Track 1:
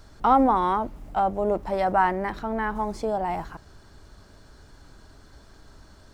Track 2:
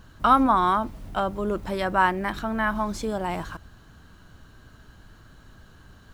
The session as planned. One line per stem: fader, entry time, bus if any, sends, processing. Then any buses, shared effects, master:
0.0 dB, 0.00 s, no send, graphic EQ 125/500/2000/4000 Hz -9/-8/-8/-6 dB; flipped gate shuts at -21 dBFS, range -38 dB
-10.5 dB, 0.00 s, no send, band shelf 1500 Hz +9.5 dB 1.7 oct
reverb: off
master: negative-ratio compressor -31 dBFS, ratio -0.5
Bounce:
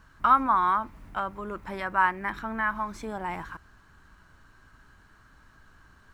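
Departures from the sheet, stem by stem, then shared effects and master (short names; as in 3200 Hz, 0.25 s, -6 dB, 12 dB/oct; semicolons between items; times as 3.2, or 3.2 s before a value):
stem 1 0.0 dB -> -9.5 dB; master: missing negative-ratio compressor -31 dBFS, ratio -0.5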